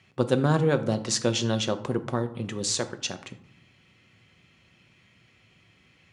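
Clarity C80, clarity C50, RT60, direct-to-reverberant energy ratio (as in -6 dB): 17.5 dB, 14.0 dB, 0.70 s, 7.5 dB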